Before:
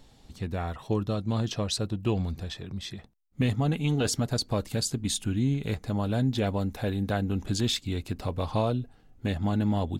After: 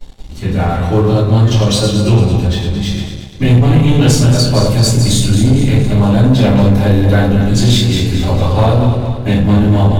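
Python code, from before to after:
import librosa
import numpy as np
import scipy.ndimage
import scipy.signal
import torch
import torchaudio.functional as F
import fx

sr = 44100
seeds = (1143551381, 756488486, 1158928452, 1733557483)

y = fx.reverse_delay_fb(x, sr, ms=112, feedback_pct=67, wet_db=-6.5)
y = fx.room_shoebox(y, sr, seeds[0], volume_m3=45.0, walls='mixed', distance_m=3.0)
y = fx.leveller(y, sr, passes=2)
y = y * librosa.db_to_amplitude(-5.5)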